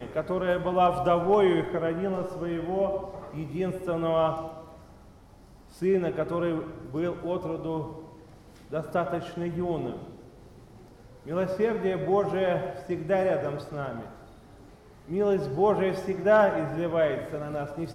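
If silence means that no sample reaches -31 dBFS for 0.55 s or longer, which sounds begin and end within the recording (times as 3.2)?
5.82–7.91
8.73–9.96
11.29–14.02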